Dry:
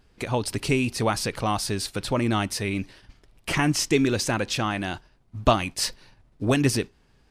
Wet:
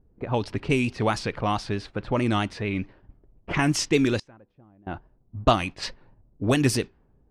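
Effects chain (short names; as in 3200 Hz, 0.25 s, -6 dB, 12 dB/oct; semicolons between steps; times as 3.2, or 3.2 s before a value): 4.19–4.87 flipped gate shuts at -21 dBFS, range -25 dB; vibrato 4.6 Hz 64 cents; low-pass opened by the level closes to 460 Hz, open at -17.5 dBFS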